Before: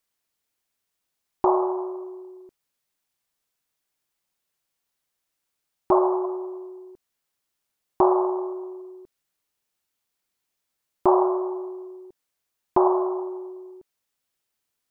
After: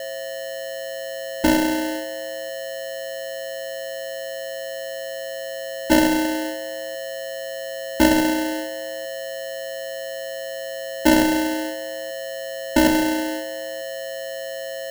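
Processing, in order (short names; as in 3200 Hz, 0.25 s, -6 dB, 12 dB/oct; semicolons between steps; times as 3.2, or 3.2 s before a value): Wiener smoothing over 25 samples; gate -35 dBFS, range -10 dB; robotiser 314 Hz; in parallel at -9.5 dB: wrapped overs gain 20.5 dB; on the sum: whine 540 Hz -32 dBFS; sample-rate reducer 1200 Hz, jitter 0%; gain +4.5 dB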